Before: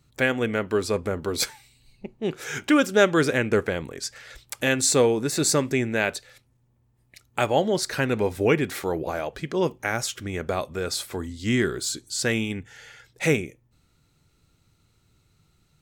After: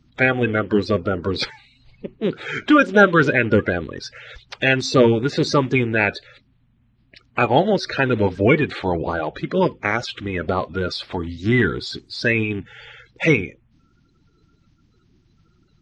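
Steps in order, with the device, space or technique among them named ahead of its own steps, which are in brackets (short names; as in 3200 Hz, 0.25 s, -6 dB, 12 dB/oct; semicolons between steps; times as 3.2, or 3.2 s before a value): clip after many re-uploads (LPF 4400 Hz 24 dB/oct; bin magnitudes rounded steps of 30 dB); gain +6 dB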